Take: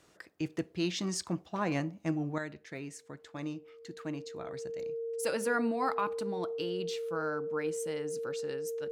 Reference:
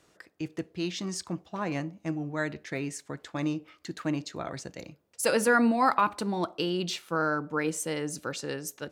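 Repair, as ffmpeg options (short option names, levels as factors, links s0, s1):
-af "bandreject=f=460:w=30,asetnsamples=n=441:p=0,asendcmd='2.38 volume volume 8.5dB',volume=1"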